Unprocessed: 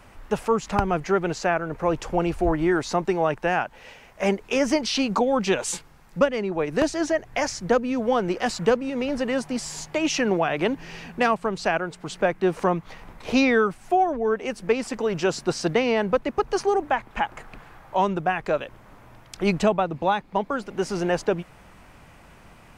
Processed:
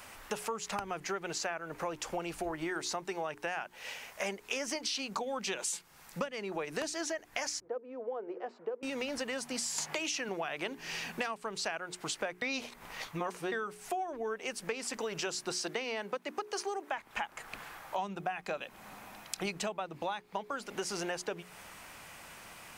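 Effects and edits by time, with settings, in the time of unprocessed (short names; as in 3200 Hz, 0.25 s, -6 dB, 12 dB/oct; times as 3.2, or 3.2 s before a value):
7.6–8.83 ladder band-pass 490 Hz, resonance 45%
9.78–10.29 three-band squash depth 70%
12.42–13.52 reverse
15.55–16.98 HPF 180 Hz 24 dB/oct
17.98–19.46 small resonant body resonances 200/760/2500/4000 Hz, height 8 dB
whole clip: tilt +3 dB/oct; notches 60/120/180/240/300/360/420 Hz; compressor 6:1, threshold -34 dBFS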